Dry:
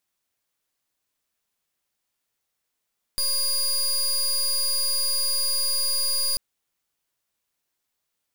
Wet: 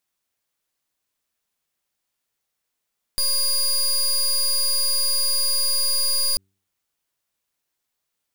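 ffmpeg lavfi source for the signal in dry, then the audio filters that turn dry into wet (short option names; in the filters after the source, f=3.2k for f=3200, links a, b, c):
-f lavfi -i "aevalsrc='0.0668*(2*lt(mod(4840*t,1),0.25)-1)':d=3.19:s=44100"
-filter_complex "[0:a]bandreject=f=96.6:t=h:w=4,bandreject=f=193.2:t=h:w=4,bandreject=f=289.8:t=h:w=4,bandreject=f=386.4:t=h:w=4,asplit=2[a][b];[b]acrusher=bits=5:dc=4:mix=0:aa=0.000001,volume=-12dB[c];[a][c]amix=inputs=2:normalize=0"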